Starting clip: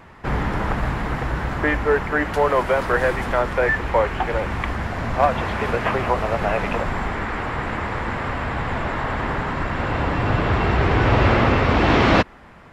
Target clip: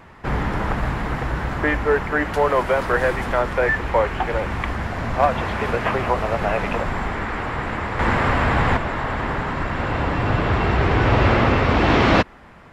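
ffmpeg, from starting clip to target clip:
ffmpeg -i in.wav -filter_complex "[0:a]asettb=1/sr,asplit=3[link_01][link_02][link_03];[link_01]atrim=end=7.994[link_04];[link_02]atrim=start=7.99:end=8.77,asetpts=PTS-STARTPTS,afade=type=in:duration=0.004:curve=qsin,afade=type=out:start_time=0.776:duration=0.004:curve=qsin,acontrast=78[link_05];[link_03]atrim=start=8.766[link_06];[link_04][link_05]acrossfade=duration=0.004:curve1=hsin:curve2=qsin[link_07];[link_07][link_06]acrossfade=duration=0.004:curve1=qsin:curve2=hsin" out.wav

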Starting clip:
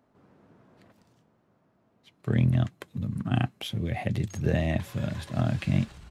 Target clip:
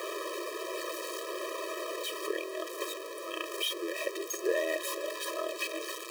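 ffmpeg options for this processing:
ffmpeg -i in.wav -af "aeval=exprs='val(0)+0.5*0.0473*sgn(val(0))':channel_layout=same,afftfilt=real='re*eq(mod(floor(b*sr/1024/330),2),1)':imag='im*eq(mod(floor(b*sr/1024/330),2),1)':win_size=1024:overlap=0.75" out.wav

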